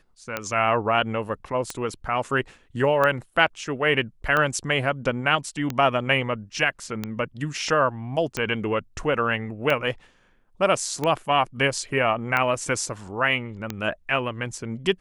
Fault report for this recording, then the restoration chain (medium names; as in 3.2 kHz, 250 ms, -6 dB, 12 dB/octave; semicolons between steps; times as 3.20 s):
tick 45 rpm -11 dBFS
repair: de-click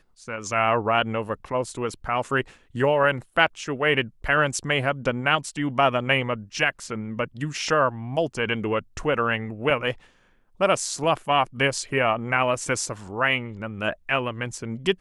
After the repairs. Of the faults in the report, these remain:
nothing left